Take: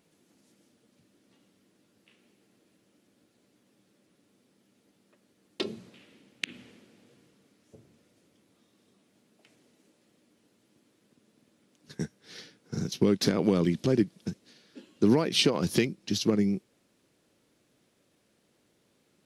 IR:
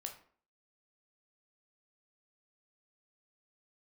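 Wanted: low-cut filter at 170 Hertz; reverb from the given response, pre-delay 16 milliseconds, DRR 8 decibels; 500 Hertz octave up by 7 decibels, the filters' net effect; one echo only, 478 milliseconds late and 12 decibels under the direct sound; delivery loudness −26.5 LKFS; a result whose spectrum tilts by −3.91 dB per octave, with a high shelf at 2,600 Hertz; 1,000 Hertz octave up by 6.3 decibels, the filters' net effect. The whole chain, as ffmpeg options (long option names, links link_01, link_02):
-filter_complex "[0:a]highpass=170,equalizer=frequency=500:width_type=o:gain=8,equalizer=frequency=1000:width_type=o:gain=4,highshelf=frequency=2600:gain=8,aecho=1:1:478:0.251,asplit=2[link_01][link_02];[1:a]atrim=start_sample=2205,adelay=16[link_03];[link_02][link_03]afir=irnorm=-1:irlink=0,volume=-5dB[link_04];[link_01][link_04]amix=inputs=2:normalize=0,volume=-3dB"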